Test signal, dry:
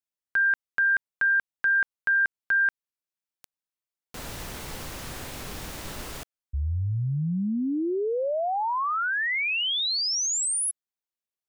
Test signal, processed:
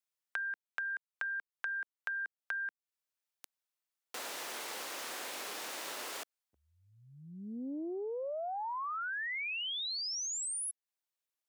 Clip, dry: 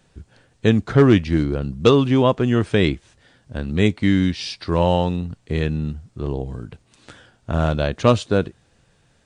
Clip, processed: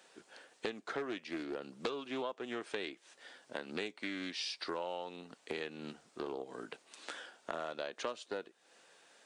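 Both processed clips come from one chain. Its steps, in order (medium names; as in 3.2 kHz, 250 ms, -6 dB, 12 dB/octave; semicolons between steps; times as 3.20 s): Bessel high-pass 490 Hz, order 4; compression 8:1, threshold -38 dBFS; loudspeaker Doppler distortion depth 0.19 ms; trim +1 dB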